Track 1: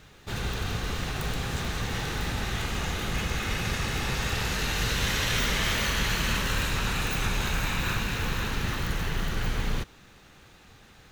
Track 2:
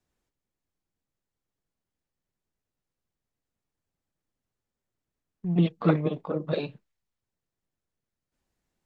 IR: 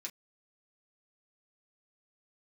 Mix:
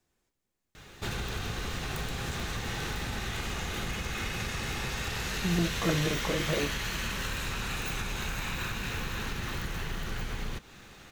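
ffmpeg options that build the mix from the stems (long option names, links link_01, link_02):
-filter_complex "[0:a]acompressor=threshold=-33dB:ratio=6,adelay=750,volume=1.5dB,asplit=2[link_01][link_02];[link_02]volume=-7.5dB[link_03];[1:a]volume=17dB,asoftclip=hard,volume=-17dB,alimiter=level_in=1.5dB:limit=-24dB:level=0:latency=1,volume=-1.5dB,volume=2dB,asplit=2[link_04][link_05];[link_05]volume=-3.5dB[link_06];[2:a]atrim=start_sample=2205[link_07];[link_03][link_06]amix=inputs=2:normalize=0[link_08];[link_08][link_07]afir=irnorm=-1:irlink=0[link_09];[link_01][link_04][link_09]amix=inputs=3:normalize=0"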